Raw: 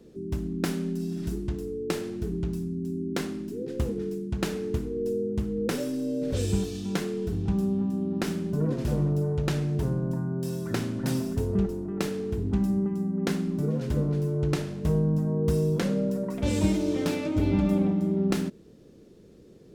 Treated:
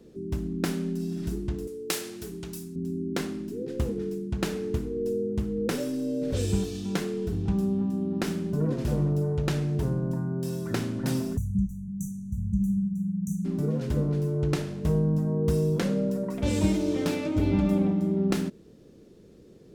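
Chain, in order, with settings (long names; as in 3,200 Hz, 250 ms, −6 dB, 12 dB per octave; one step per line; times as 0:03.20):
0:01.67–0:02.76: spectral tilt +3.5 dB per octave
0:11.37–0:13.45: time-frequency box erased 230–5,800 Hz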